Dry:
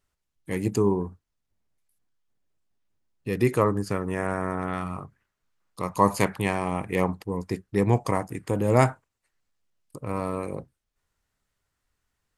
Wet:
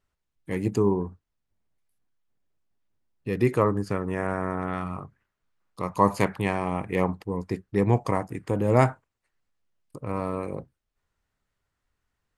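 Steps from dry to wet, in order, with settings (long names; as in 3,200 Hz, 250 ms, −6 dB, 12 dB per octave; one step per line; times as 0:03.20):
high-shelf EQ 4,900 Hz −9 dB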